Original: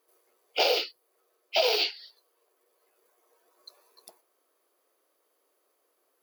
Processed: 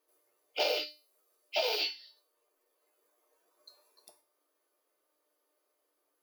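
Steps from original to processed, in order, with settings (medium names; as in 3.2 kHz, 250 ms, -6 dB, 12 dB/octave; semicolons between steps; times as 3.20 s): 0.87–1.55 s: treble shelf 3.6 kHz +7.5 dB; feedback comb 300 Hz, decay 0.35 s, harmonics all, mix 80%; trim +5 dB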